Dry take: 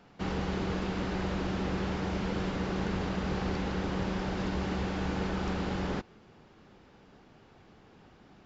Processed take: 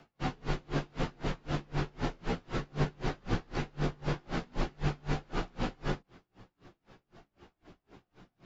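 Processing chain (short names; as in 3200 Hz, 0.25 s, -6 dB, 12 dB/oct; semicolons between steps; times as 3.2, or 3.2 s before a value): chorus voices 4, 0.31 Hz, delay 15 ms, depth 2.8 ms; frequency shift -42 Hz; dB-linear tremolo 3.9 Hz, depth 33 dB; gain +7 dB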